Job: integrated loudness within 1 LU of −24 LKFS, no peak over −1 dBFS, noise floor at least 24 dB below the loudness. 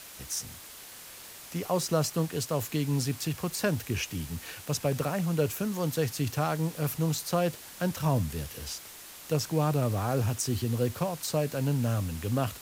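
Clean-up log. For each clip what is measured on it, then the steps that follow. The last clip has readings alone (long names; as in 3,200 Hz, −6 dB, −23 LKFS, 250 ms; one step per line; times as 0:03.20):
background noise floor −47 dBFS; target noise floor −55 dBFS; integrated loudness −30.5 LKFS; sample peak −14.0 dBFS; target loudness −24.0 LKFS
→ broadband denoise 8 dB, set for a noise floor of −47 dBFS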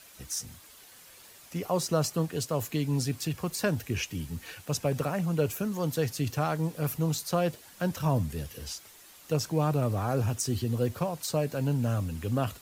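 background noise floor −53 dBFS; target noise floor −55 dBFS
→ broadband denoise 6 dB, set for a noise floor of −53 dBFS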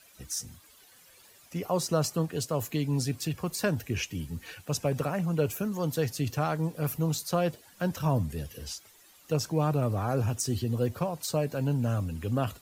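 background noise floor −57 dBFS; integrated loudness −30.5 LKFS; sample peak −14.5 dBFS; target loudness −24.0 LKFS
→ level +6.5 dB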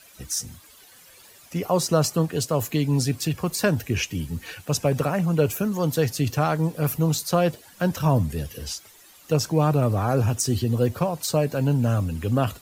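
integrated loudness −24.0 LKFS; sample peak −8.0 dBFS; background noise floor −51 dBFS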